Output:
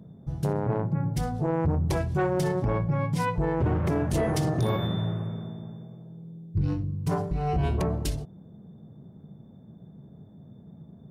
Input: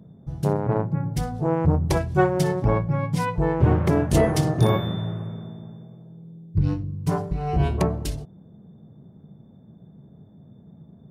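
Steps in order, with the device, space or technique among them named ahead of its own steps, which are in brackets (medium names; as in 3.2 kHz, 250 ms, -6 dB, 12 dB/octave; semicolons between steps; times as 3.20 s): soft clipper into limiter (saturation -11.5 dBFS, distortion -18 dB; peak limiter -18.5 dBFS, peak gain reduction 6.5 dB)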